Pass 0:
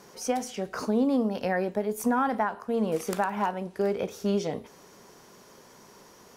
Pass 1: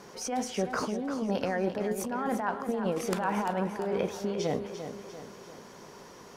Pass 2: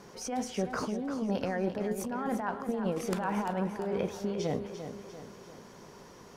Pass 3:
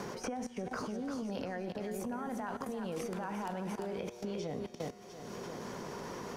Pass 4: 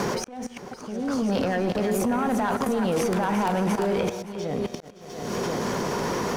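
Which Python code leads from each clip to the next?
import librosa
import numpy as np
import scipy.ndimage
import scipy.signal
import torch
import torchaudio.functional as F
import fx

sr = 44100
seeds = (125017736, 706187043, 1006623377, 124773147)

y1 = fx.over_compress(x, sr, threshold_db=-30.0, ratio=-1.0)
y1 = fx.high_shelf(y1, sr, hz=8800.0, db=-11.0)
y1 = fx.echo_feedback(y1, sr, ms=345, feedback_pct=50, wet_db=-9.5)
y2 = fx.low_shelf(y1, sr, hz=190.0, db=7.0)
y2 = y2 * librosa.db_to_amplitude(-3.5)
y3 = fx.level_steps(y2, sr, step_db=20)
y3 = fx.comb_fb(y3, sr, f0_hz=120.0, decay_s=1.7, harmonics='all', damping=0.0, mix_pct=60)
y3 = fx.band_squash(y3, sr, depth_pct=100)
y3 = y3 * librosa.db_to_amplitude(9.0)
y4 = fx.auto_swell(y3, sr, attack_ms=573.0)
y4 = fx.leveller(y4, sr, passes=2)
y4 = y4 + 10.0 ** (-16.0 / 20.0) * np.pad(y4, (int(569 * sr / 1000.0), 0))[:len(y4)]
y4 = y4 * librosa.db_to_amplitude(8.5)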